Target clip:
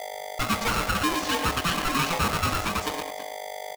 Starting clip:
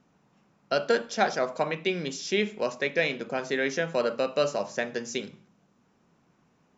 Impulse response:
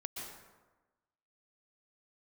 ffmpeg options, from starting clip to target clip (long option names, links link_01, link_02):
-filter_complex "[0:a]acrossover=split=4600[link_01][link_02];[link_02]acompressor=threshold=-50dB:ratio=4:attack=1:release=60[link_03];[link_01][link_03]amix=inputs=2:normalize=0,bandreject=frequency=45.13:width_type=h:width=4,bandreject=frequency=90.26:width_type=h:width=4,bandreject=frequency=135.39:width_type=h:width=4,bandreject=frequency=180.52:width_type=h:width=4,bandreject=frequency=225.65:width_type=h:width=4,bandreject=frequency=270.78:width_type=h:width=4,bandreject=frequency=315.91:width_type=h:width=4,bandreject=frequency=361.04:width_type=h:width=4,bandreject=frequency=406.17:width_type=h:width=4,acontrast=62,aecho=1:1:216|613:0.282|0.141,aphaser=in_gain=1:out_gain=1:delay=3.1:decay=0.57:speed=0.75:type=triangular,aeval=exprs='val(0)+0.0251*(sin(2*PI*50*n/s)+sin(2*PI*2*50*n/s)/2+sin(2*PI*3*50*n/s)/3+sin(2*PI*4*50*n/s)/4+sin(2*PI*5*50*n/s)/5)':channel_layout=same,volume=19dB,asoftclip=hard,volume=-19dB,asplit=2[link_04][link_05];[1:a]atrim=start_sample=2205,afade=type=out:start_time=0.26:duration=0.01,atrim=end_sample=11907[link_06];[link_05][link_06]afir=irnorm=-1:irlink=0,volume=-3dB[link_07];[link_04][link_07]amix=inputs=2:normalize=0,atempo=1.8,aeval=exprs='val(0)*sgn(sin(2*PI*680*n/s))':channel_layout=same,volume=-5dB"